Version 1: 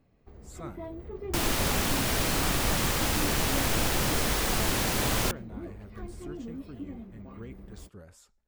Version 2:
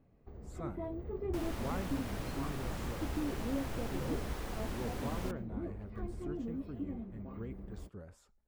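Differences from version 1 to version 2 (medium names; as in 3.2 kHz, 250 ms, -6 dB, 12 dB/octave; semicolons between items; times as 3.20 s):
second sound -11.5 dB; master: add treble shelf 2.1 kHz -11.5 dB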